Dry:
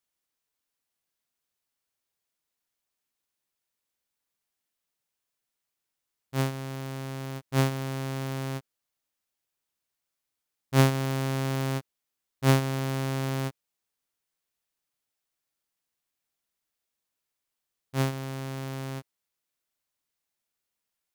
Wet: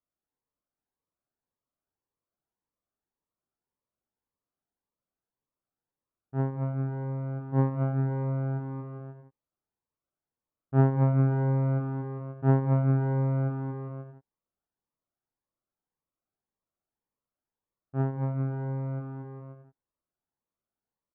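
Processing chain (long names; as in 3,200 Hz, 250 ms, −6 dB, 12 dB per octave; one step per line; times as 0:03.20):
low-pass filter 1,300 Hz 24 dB per octave
bouncing-ball delay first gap 230 ms, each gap 0.75×, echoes 5
phaser whose notches keep moving one way rising 1.8 Hz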